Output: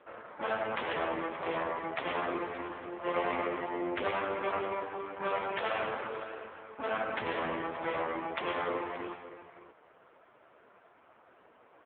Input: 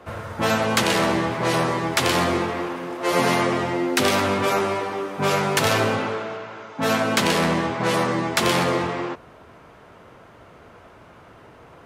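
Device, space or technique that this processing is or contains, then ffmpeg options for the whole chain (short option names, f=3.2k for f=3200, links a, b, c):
satellite phone: -filter_complex "[0:a]asettb=1/sr,asplit=3[a][b][c];[a]atrim=end=5.204[d];[b]atrim=start=5.2:end=6.74,asetpts=PTS-STARTPTS,afade=t=in:d=0.004:c=qsin,afade=t=out:st=1.536:d=0.004:c=qsin,bass=f=250:g=-2,treble=f=4k:g=5[e];[c]atrim=start=6.736[f];[d][e]acrossfade=d=0.004:c1=hsin:c2=qsin[g];[g][f]acrossfade=d=0.004:c1=qsin:c2=hsin,highpass=340,lowpass=3k,aecho=1:1:565:0.188,volume=-8dB" -ar 8000 -c:a libopencore_amrnb -b:a 5150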